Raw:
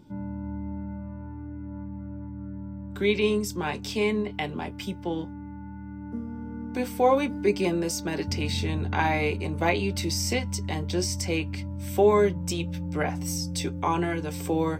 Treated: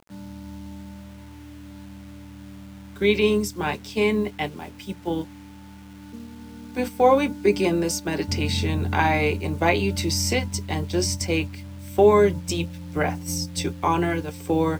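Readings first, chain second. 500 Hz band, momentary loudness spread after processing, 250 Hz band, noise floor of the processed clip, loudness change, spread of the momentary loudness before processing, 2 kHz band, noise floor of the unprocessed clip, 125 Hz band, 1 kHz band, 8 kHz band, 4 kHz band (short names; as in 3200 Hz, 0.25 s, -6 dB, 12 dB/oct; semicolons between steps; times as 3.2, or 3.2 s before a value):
+4.0 dB, 23 LU, +3.0 dB, -43 dBFS, +4.5 dB, 15 LU, +4.0 dB, -39 dBFS, +2.5 dB, +4.0 dB, +3.5 dB, +3.5 dB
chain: notches 60/120/180/240 Hz; gate -30 dBFS, range -8 dB; bit-crush 9-bit; gain +4 dB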